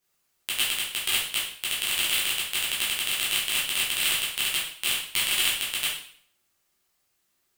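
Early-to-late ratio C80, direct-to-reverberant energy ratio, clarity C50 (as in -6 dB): 7.5 dB, -8.0 dB, 3.0 dB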